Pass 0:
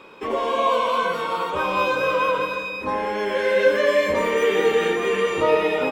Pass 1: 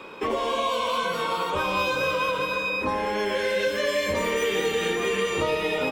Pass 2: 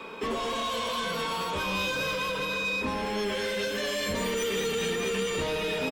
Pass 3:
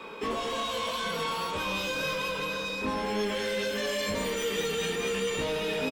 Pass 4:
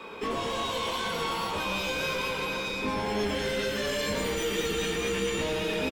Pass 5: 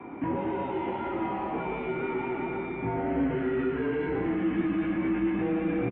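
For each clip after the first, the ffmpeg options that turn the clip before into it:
-filter_complex "[0:a]acrossover=split=160|3000[s0][s1][s2];[s1]acompressor=threshold=0.0398:ratio=6[s3];[s0][s3][s2]amix=inputs=3:normalize=0,volume=1.58"
-filter_complex "[0:a]aecho=1:1:4.5:0.41,acrossover=split=270|3000[s0][s1][s2];[s1]asoftclip=type=tanh:threshold=0.0299[s3];[s0][s3][s2]amix=inputs=3:normalize=0"
-filter_complex "[0:a]aeval=exprs='val(0)+0.00126*sin(2*PI*850*n/s)':c=same,asplit=2[s0][s1];[s1]adelay=19,volume=0.531[s2];[s0][s2]amix=inputs=2:normalize=0,volume=0.794"
-filter_complex "[0:a]aeval=exprs='0.119*(cos(1*acos(clip(val(0)/0.119,-1,1)))-cos(1*PI/2))+0.0119*(cos(2*acos(clip(val(0)/0.119,-1,1)))-cos(2*PI/2))':c=same,asplit=8[s0][s1][s2][s3][s4][s5][s6][s7];[s1]adelay=115,afreqshift=-130,volume=0.376[s8];[s2]adelay=230,afreqshift=-260,volume=0.214[s9];[s3]adelay=345,afreqshift=-390,volume=0.122[s10];[s4]adelay=460,afreqshift=-520,volume=0.07[s11];[s5]adelay=575,afreqshift=-650,volume=0.0398[s12];[s6]adelay=690,afreqshift=-780,volume=0.0226[s13];[s7]adelay=805,afreqshift=-910,volume=0.0129[s14];[s0][s8][s9][s10][s11][s12][s13][s14]amix=inputs=8:normalize=0"
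-af "highpass=f=310:t=q:w=0.5412,highpass=f=310:t=q:w=1.307,lowpass=f=2500:t=q:w=0.5176,lowpass=f=2500:t=q:w=0.7071,lowpass=f=2500:t=q:w=1.932,afreqshift=-140,tiltshelf=f=760:g=6.5"

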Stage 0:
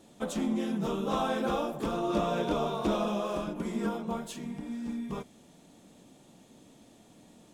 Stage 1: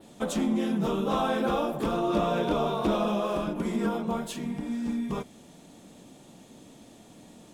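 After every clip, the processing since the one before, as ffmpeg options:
-filter_complex "[0:a]adynamicequalizer=threshold=0.001:dfrequency=6600:dqfactor=1.4:tfrequency=6600:tqfactor=1.4:attack=5:release=100:ratio=0.375:range=2.5:mode=cutabove:tftype=bell,asplit=2[s0][s1];[s1]alimiter=level_in=1.41:limit=0.0631:level=0:latency=1:release=95,volume=0.708,volume=0.891[s2];[s0][s2]amix=inputs=2:normalize=0"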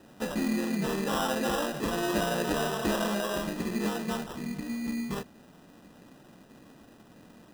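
-af "acrusher=samples=20:mix=1:aa=0.000001,volume=0.75"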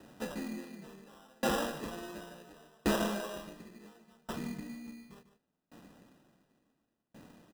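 -filter_complex "[0:a]asplit=2[s0][s1];[s1]aecho=0:1:148:0.376[s2];[s0][s2]amix=inputs=2:normalize=0,aeval=exprs='val(0)*pow(10,-35*if(lt(mod(0.7*n/s,1),2*abs(0.7)/1000),1-mod(0.7*n/s,1)/(2*abs(0.7)/1000),(mod(0.7*n/s,1)-2*abs(0.7)/1000)/(1-2*abs(0.7)/1000))/20)':c=same"

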